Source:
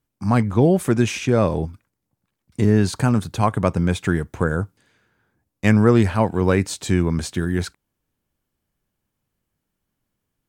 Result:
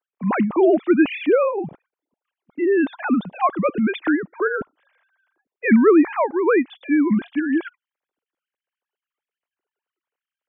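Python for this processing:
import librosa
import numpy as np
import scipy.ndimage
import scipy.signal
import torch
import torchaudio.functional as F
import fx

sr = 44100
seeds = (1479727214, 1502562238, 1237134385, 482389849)

y = fx.sine_speech(x, sr)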